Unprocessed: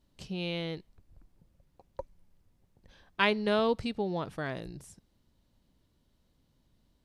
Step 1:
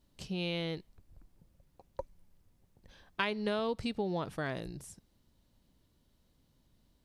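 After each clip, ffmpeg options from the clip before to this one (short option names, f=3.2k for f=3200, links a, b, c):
-af "highshelf=f=7.2k:g=4.5,acompressor=threshold=-29dB:ratio=6"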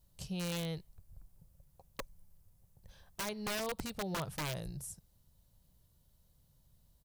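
-af "firequalizer=gain_entry='entry(150,0);entry(260,-15);entry(540,-5);entry(2100,-9);entry(6900,0);entry(12000,6)':delay=0.05:min_phase=1,aeval=exprs='(mod(47.3*val(0)+1,2)-1)/47.3':c=same,volume=3dB"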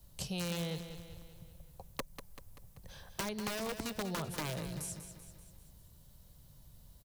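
-filter_complex "[0:a]acrossover=split=160|410|990|6500[a][b][c][d][e];[a]acompressor=threshold=-59dB:ratio=4[f];[b]acompressor=threshold=-53dB:ratio=4[g];[c]acompressor=threshold=-57dB:ratio=4[h];[d]acompressor=threshold=-52dB:ratio=4[i];[e]acompressor=threshold=-55dB:ratio=4[j];[f][g][h][i][j]amix=inputs=5:normalize=0,aecho=1:1:193|386|579|772|965|1158:0.316|0.168|0.0888|0.0471|0.025|0.0132,volume=9.5dB"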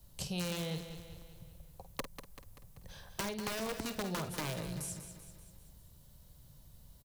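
-filter_complex "[0:a]asplit=2[a][b];[b]adelay=50,volume=-10.5dB[c];[a][c]amix=inputs=2:normalize=0"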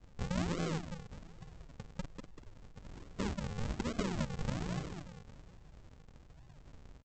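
-af "aeval=exprs='if(lt(val(0),0),0.708*val(0),val(0))':c=same,aresample=16000,acrusher=samples=34:mix=1:aa=0.000001:lfo=1:lforange=34:lforate=1.2,aresample=44100,volume=3.5dB"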